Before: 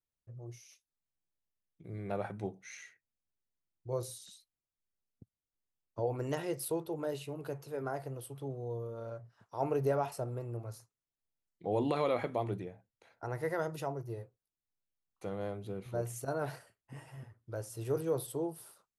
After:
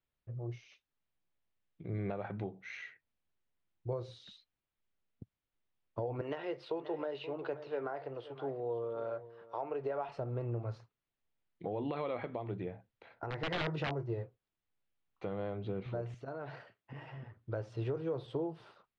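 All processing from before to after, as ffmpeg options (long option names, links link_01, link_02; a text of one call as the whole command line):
ffmpeg -i in.wav -filter_complex "[0:a]asettb=1/sr,asplit=3[link_01][link_02][link_03];[link_01]atrim=end=6.214[link_04];[link_02]atrim=start=6.21:end=10.09,asetpts=PTS-STARTPTS,afade=type=in:duration=0.004:curve=qsin,afade=type=out:start_time=3.876:duration=0.004:curve=qsin,acrossover=split=320 6200:gain=0.178 1 0.224[link_05][link_06][link_07];[link_05][link_06][link_07]amix=inputs=3:normalize=0,aecho=1:1:526:0.133,atrim=end_sample=171108[link_08];[link_03]atrim=start=10.086[link_09];[link_04][link_08]acrossfade=duration=0.004:curve1=hsin:curve2=qsin[link_10];[link_10][link_09]acrossfade=duration=0.004:curve1=qsin:curve2=hsin,asettb=1/sr,asplit=3[link_11][link_12][link_13];[link_11]atrim=end=13.304[link_14];[link_12]atrim=start=13.3:end=14.14,asetpts=PTS-STARTPTS,afade=type=in:duration=0.004:curve=qsin,afade=type=out:start_time=0.836:duration=0.004:curve=qsin,asplit=2[link_15][link_16];[link_16]adelay=20,volume=-10dB[link_17];[link_15][link_17]amix=inputs=2:normalize=0,atrim=end_sample=37044,aeval=exprs='(mod(29.9*val(0)+1,2)-1)/29.9':channel_layout=same[link_18];[link_13]atrim=start=14.136[link_19];[link_14][link_18]acrossfade=duration=0.004:curve1=hsin:curve2=qsin[link_20];[link_20][link_19]acrossfade=duration=0.004:curve1=qsin:curve2=hsin,asettb=1/sr,asplit=3[link_21][link_22][link_23];[link_21]atrim=end=16.144[link_24];[link_22]atrim=start=16.14:end=17.37,asetpts=PTS-STARTPTS,afade=type=in:duration=0.004:curve=qsin,afade=type=out:start_time=1.226:duration=0.004:curve=qsin,highpass=120,acompressor=threshold=-49dB:ratio=3:attack=3.2:release=140:knee=1:detection=peak[link_25];[link_23]atrim=start=17.366[link_26];[link_24][link_25]acrossfade=duration=0.004:curve1=hsin:curve2=qsin[link_27];[link_27][link_26]acrossfade=duration=0.004:curve1=qsin:curve2=hsin,lowpass=frequency=3600:width=0.5412,lowpass=frequency=3600:width=1.3066,acompressor=threshold=-37dB:ratio=6,alimiter=level_in=8.5dB:limit=-24dB:level=0:latency=1:release=386,volume=-8.5dB,volume=6dB" out.wav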